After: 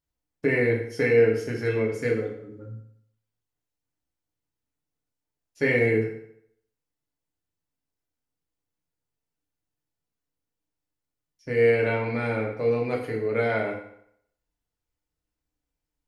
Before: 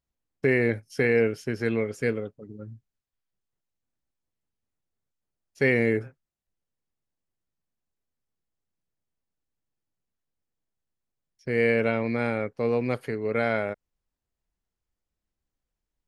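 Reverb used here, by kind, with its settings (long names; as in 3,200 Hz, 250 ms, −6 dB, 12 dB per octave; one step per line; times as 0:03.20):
feedback delay network reverb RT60 0.7 s, low-frequency decay 0.9×, high-frequency decay 0.85×, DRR −2 dB
level −3.5 dB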